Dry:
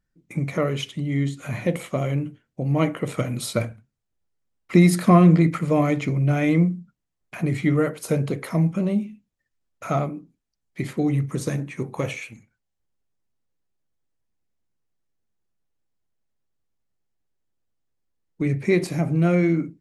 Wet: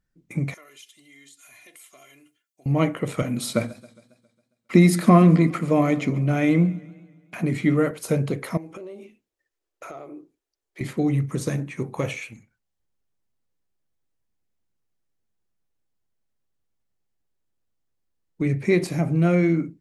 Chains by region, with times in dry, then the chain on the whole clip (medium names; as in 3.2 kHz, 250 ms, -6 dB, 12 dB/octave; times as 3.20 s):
0.54–2.66 s: differentiator + comb 2.9 ms, depth 73% + compression 2:1, threshold -51 dBFS
3.22–7.91 s: high-pass 130 Hz + peaking EQ 240 Hz +6.5 dB 0.31 oct + modulated delay 136 ms, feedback 55%, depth 102 cents, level -20.5 dB
8.57–10.81 s: resonant low shelf 270 Hz -10 dB, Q 3 + compression 8:1, threshold -35 dBFS
whole clip: none